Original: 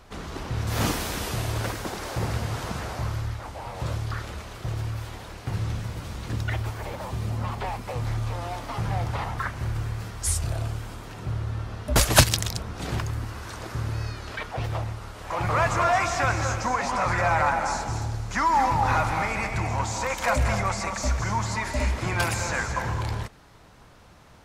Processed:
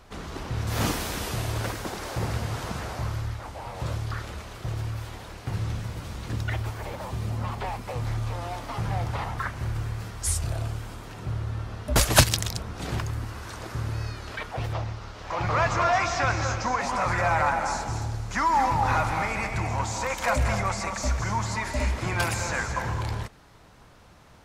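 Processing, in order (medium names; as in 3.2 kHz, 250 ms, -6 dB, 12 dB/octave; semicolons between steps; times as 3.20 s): 14.73–16.80 s: resonant high shelf 7.4 kHz -9.5 dB, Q 1.5; trim -1 dB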